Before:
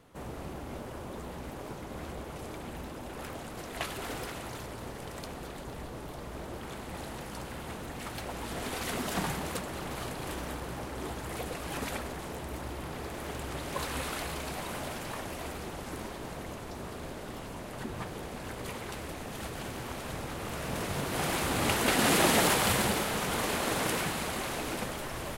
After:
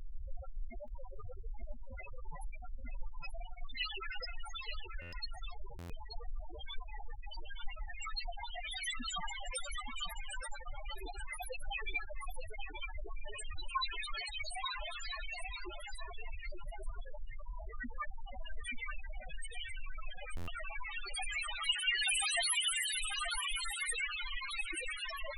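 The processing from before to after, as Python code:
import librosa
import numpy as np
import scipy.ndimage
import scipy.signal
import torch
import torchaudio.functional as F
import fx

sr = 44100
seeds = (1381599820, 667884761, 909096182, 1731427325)

p1 = fx.highpass(x, sr, hz=410.0, slope=6)
p2 = fx.tilt_shelf(p1, sr, db=-9.0, hz=1500.0)
p3 = fx.rider(p2, sr, range_db=5, speed_s=0.5)
p4 = p2 + (p3 * 10.0 ** (-1.5 / 20.0))
p5 = fx.dmg_noise_colour(p4, sr, seeds[0], colour='brown', level_db=-44.0)
p6 = fx.spec_topn(p5, sr, count=2)
p7 = p6 + fx.echo_single(p6, sr, ms=880, db=-7.5, dry=0)
p8 = fx.buffer_glitch(p7, sr, at_s=(5.01, 5.78, 20.36), block=512, repeats=9)
y = p8 * 10.0 ** (6.0 / 20.0)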